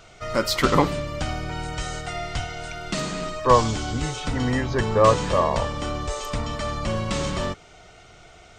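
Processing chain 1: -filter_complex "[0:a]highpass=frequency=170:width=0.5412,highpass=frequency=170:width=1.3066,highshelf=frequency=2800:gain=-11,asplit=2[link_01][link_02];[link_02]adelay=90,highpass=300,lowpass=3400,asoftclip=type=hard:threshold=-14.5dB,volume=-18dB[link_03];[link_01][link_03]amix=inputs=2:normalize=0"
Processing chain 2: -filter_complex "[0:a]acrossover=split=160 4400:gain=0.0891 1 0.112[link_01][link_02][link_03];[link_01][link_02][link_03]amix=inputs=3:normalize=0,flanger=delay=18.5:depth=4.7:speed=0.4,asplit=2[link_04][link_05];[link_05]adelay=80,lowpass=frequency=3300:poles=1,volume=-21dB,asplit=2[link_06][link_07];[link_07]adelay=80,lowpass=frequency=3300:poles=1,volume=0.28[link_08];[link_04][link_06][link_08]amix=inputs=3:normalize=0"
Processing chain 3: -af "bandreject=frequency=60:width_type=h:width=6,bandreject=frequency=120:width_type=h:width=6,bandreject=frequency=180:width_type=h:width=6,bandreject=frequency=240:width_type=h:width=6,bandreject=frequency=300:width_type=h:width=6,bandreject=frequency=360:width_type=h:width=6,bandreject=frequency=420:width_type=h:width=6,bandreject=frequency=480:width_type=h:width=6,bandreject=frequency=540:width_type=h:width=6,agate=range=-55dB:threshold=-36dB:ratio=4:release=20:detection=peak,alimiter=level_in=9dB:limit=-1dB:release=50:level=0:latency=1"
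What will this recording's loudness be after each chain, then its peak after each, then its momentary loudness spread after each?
−26.0, −28.0, −17.0 LKFS; −4.5, −6.0, −1.0 dBFS; 14, 14, 10 LU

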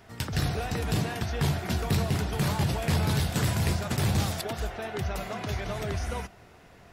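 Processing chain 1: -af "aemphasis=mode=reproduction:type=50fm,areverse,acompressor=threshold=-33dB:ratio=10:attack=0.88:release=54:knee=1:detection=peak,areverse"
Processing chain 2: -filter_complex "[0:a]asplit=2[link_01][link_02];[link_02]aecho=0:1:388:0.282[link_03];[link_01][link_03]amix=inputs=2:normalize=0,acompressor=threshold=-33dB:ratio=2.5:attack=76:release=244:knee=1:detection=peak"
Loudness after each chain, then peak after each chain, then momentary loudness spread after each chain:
−38.0, −33.0 LKFS; −27.0, −19.0 dBFS; 3, 3 LU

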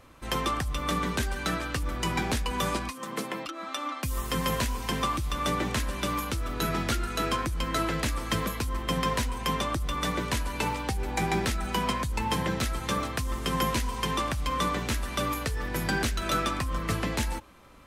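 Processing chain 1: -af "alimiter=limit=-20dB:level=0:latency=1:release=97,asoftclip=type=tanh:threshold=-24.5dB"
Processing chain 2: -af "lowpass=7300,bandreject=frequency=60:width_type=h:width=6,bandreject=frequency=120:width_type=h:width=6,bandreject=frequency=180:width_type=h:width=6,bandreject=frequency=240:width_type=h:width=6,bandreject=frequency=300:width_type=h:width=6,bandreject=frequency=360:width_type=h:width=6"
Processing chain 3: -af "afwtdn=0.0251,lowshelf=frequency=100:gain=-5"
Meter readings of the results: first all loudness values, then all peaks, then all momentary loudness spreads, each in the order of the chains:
−33.0, −30.5, −32.0 LKFS; −25.0, −15.5, −16.0 dBFS; 2, 5, 6 LU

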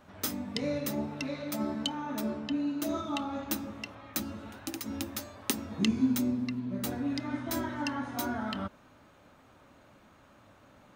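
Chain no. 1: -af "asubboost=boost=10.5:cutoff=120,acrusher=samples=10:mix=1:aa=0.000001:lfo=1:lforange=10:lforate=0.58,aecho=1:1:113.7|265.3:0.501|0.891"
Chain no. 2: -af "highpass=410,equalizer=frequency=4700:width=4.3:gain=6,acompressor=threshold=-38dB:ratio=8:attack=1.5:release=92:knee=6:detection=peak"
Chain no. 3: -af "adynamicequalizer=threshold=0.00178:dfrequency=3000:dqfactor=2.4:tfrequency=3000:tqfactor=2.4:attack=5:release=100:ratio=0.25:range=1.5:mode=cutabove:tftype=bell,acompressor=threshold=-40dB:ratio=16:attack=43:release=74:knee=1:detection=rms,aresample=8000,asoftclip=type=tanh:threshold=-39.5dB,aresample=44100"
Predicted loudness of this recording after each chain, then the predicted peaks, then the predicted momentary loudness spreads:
−29.0, −44.0, −45.0 LKFS; −10.5, −19.5, −34.0 dBFS; 10, 18, 15 LU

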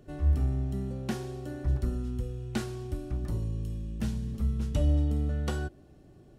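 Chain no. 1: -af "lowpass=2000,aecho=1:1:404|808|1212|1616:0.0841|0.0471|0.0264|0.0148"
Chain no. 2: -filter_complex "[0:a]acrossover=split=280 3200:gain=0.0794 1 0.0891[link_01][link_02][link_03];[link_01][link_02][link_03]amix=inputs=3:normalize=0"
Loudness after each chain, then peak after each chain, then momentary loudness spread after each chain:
−32.0, −43.0 LKFS; −16.5, −23.0 dBFS; 9, 8 LU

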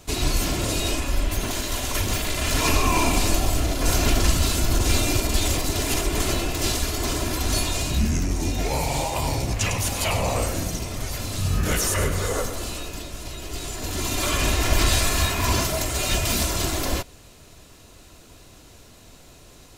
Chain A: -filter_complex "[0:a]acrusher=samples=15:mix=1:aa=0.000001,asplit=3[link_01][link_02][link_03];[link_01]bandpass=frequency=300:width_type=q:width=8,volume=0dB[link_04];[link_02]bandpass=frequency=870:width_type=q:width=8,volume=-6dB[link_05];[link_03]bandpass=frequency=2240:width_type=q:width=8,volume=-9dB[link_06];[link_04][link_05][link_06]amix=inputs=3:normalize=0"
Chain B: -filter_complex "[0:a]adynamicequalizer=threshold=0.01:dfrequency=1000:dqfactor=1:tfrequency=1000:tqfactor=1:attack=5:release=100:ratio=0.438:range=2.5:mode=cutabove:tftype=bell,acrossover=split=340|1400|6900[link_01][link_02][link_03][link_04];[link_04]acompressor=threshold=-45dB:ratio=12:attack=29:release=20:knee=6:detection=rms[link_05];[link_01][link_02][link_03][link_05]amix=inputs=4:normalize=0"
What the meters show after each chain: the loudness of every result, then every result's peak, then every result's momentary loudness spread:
−37.5, −25.0 LKFS; −21.0, −7.5 dBFS; 10, 8 LU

